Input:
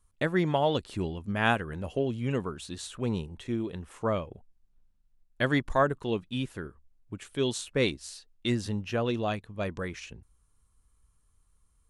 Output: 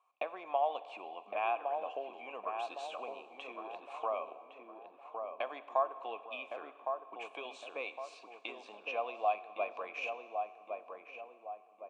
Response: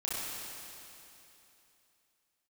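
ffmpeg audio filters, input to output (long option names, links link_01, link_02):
-filter_complex "[0:a]acompressor=threshold=-37dB:ratio=6,asplit=3[link_01][link_02][link_03];[link_01]bandpass=frequency=730:width_type=q:width=8,volume=0dB[link_04];[link_02]bandpass=frequency=1090:width_type=q:width=8,volume=-6dB[link_05];[link_03]bandpass=frequency=2440:width_type=q:width=8,volume=-9dB[link_06];[link_04][link_05][link_06]amix=inputs=3:normalize=0,highpass=frequency=330:width=0.5412,highpass=frequency=330:width=1.3066,equalizer=frequency=380:width_type=q:width=4:gain=-6,equalizer=frequency=950:width_type=q:width=4:gain=10,equalizer=frequency=1400:width_type=q:width=4:gain=-5,equalizer=frequency=2300:width_type=q:width=4:gain=7,equalizer=frequency=4800:width_type=q:width=4:gain=-4,lowpass=frequency=8400:width=0.5412,lowpass=frequency=8400:width=1.3066,asplit=2[link_07][link_08];[link_08]adelay=1111,lowpass=frequency=1100:poles=1,volume=-4dB,asplit=2[link_09][link_10];[link_10]adelay=1111,lowpass=frequency=1100:poles=1,volume=0.49,asplit=2[link_11][link_12];[link_12]adelay=1111,lowpass=frequency=1100:poles=1,volume=0.49,asplit=2[link_13][link_14];[link_14]adelay=1111,lowpass=frequency=1100:poles=1,volume=0.49,asplit=2[link_15][link_16];[link_16]adelay=1111,lowpass=frequency=1100:poles=1,volume=0.49,asplit=2[link_17][link_18];[link_18]adelay=1111,lowpass=frequency=1100:poles=1,volume=0.49[link_19];[link_07][link_09][link_11][link_13][link_15][link_17][link_19]amix=inputs=7:normalize=0,asplit=2[link_20][link_21];[1:a]atrim=start_sample=2205,asetrate=66150,aresample=44100[link_22];[link_21][link_22]afir=irnorm=-1:irlink=0,volume=-14dB[link_23];[link_20][link_23]amix=inputs=2:normalize=0,volume=13dB"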